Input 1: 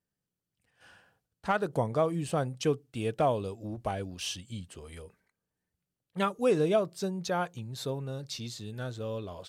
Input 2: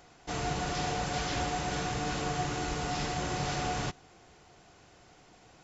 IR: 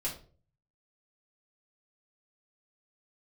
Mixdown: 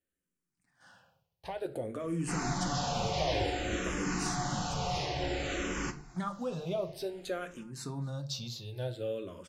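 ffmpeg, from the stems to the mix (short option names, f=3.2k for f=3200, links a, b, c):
-filter_complex "[0:a]alimiter=level_in=2dB:limit=-24dB:level=0:latency=1:release=64,volume=-2dB,volume=-1.5dB,asplit=3[a][b][c];[b]volume=-6.5dB[d];[c]volume=-23dB[e];[1:a]adelay=2000,volume=-1.5dB,asplit=2[f][g];[g]volume=-4.5dB[h];[2:a]atrim=start_sample=2205[i];[d][h]amix=inputs=2:normalize=0[j];[j][i]afir=irnorm=-1:irlink=0[k];[e]aecho=0:1:262:1[l];[a][f][k][l]amix=inputs=4:normalize=0,asplit=2[m][n];[n]afreqshift=-0.55[o];[m][o]amix=inputs=2:normalize=1"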